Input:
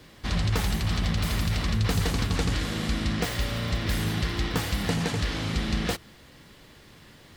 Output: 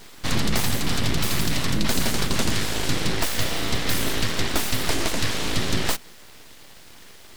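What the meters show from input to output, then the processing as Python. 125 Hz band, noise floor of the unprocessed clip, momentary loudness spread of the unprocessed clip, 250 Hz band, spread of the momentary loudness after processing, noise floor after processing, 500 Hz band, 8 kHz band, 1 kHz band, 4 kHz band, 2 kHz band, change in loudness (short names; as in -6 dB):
-2.0 dB, -52 dBFS, 3 LU, +2.0 dB, 2 LU, -45 dBFS, +4.0 dB, +10.0 dB, +4.0 dB, +6.5 dB, +5.0 dB, +3.0 dB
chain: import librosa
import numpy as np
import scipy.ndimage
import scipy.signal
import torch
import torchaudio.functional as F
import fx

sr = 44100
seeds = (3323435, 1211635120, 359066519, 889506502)

p1 = fx.high_shelf(x, sr, hz=4200.0, db=6.5)
p2 = fx.rider(p1, sr, range_db=10, speed_s=0.5)
p3 = p1 + (p2 * librosa.db_to_amplitude(-1.0))
y = np.abs(p3)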